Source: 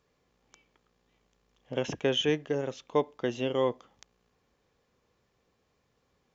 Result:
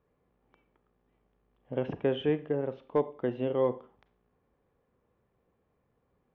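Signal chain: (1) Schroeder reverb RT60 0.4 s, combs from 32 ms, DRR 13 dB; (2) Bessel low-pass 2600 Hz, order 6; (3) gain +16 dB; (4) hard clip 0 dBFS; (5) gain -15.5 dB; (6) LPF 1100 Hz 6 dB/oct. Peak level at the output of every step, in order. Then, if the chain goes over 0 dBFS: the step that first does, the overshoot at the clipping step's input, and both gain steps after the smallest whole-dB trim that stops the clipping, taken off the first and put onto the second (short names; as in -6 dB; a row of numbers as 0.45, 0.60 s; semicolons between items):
-13.0, -13.0, +3.0, 0.0, -15.5, -15.5 dBFS; step 3, 3.0 dB; step 3 +13 dB, step 5 -12.5 dB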